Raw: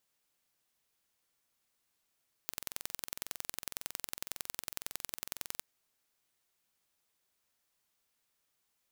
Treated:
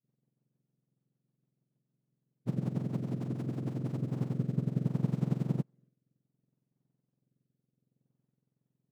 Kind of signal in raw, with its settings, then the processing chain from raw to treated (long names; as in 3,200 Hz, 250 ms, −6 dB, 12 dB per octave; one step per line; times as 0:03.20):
impulse train 21.9 per second, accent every 2, −8.5 dBFS 3.14 s
frequency axis turned over on the octave scale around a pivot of 1,600 Hz
downward expander −58 dBFS
rotating-speaker cabinet horn 6.7 Hz, later 0.65 Hz, at 0:03.52